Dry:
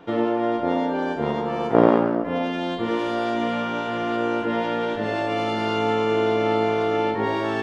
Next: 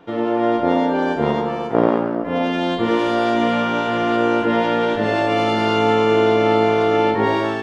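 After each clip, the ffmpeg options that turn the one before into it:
ffmpeg -i in.wav -af "dynaudnorm=framelen=120:gausssize=5:maxgain=7.5dB,volume=-1dB" out.wav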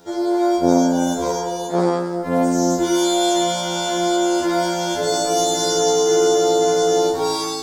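ffmpeg -i in.wav -af "aexciter=amount=8.7:drive=8.9:freq=4300,afftfilt=real='re*2*eq(mod(b,4),0)':imag='im*2*eq(mod(b,4),0)':win_size=2048:overlap=0.75" out.wav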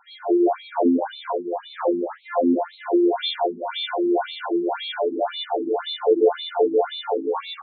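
ffmpeg -i in.wav -filter_complex "[0:a]asplit=2[link_01][link_02];[link_02]asplit=4[link_03][link_04][link_05][link_06];[link_03]adelay=84,afreqshift=82,volume=-10.5dB[link_07];[link_04]adelay=168,afreqshift=164,volume=-19.9dB[link_08];[link_05]adelay=252,afreqshift=246,volume=-29.2dB[link_09];[link_06]adelay=336,afreqshift=328,volume=-38.6dB[link_10];[link_07][link_08][link_09][link_10]amix=inputs=4:normalize=0[link_11];[link_01][link_11]amix=inputs=2:normalize=0,afftfilt=real='re*between(b*sr/1024,270*pow(3100/270,0.5+0.5*sin(2*PI*1.9*pts/sr))/1.41,270*pow(3100/270,0.5+0.5*sin(2*PI*1.9*pts/sr))*1.41)':imag='im*between(b*sr/1024,270*pow(3100/270,0.5+0.5*sin(2*PI*1.9*pts/sr))/1.41,270*pow(3100/270,0.5+0.5*sin(2*PI*1.9*pts/sr))*1.41)':win_size=1024:overlap=0.75,volume=2dB" out.wav

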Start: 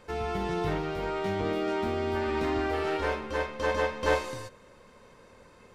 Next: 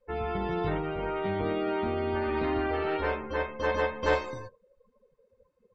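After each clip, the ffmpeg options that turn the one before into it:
ffmpeg -i in.wav -af "afftdn=noise_reduction=29:noise_floor=-42" out.wav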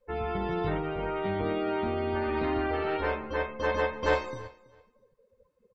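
ffmpeg -i in.wav -af "aecho=1:1:329|658:0.0841|0.0168" out.wav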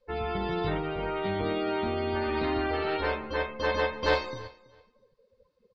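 ffmpeg -i in.wav -af "lowpass=frequency=4500:width_type=q:width=3.4" out.wav

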